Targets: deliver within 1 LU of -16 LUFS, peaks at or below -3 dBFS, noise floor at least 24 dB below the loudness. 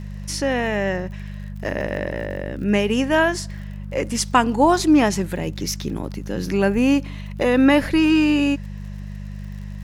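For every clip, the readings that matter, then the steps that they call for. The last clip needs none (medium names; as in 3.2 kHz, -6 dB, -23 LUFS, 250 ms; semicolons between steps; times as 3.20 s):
tick rate 55 per s; hum 50 Hz; highest harmonic 200 Hz; hum level -30 dBFS; loudness -20.5 LUFS; peak level -3.5 dBFS; loudness target -16.0 LUFS
-> de-click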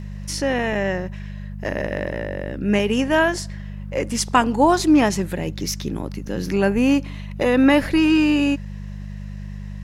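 tick rate 0.30 per s; hum 50 Hz; highest harmonic 200 Hz; hum level -30 dBFS
-> de-hum 50 Hz, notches 4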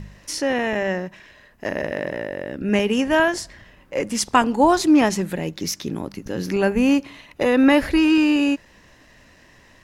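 hum not found; loudness -20.5 LUFS; peak level -3.5 dBFS; loudness target -16.0 LUFS
-> trim +4.5 dB; peak limiter -3 dBFS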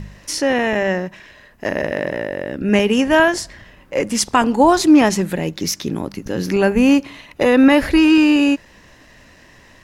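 loudness -16.5 LUFS; peak level -3.0 dBFS; noise floor -48 dBFS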